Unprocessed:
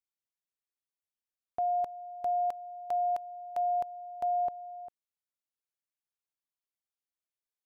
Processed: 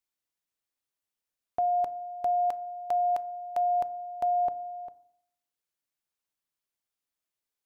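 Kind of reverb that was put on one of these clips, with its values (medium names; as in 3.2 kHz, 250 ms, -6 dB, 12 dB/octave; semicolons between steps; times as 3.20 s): FDN reverb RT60 0.68 s, low-frequency decay 1.2×, high-frequency decay 0.35×, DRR 15.5 dB; trim +4.5 dB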